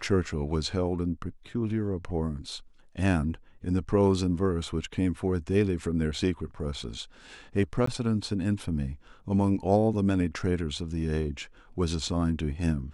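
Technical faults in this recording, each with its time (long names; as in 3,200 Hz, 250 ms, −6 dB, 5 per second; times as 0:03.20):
0:07.86–0:07.87: drop-out 14 ms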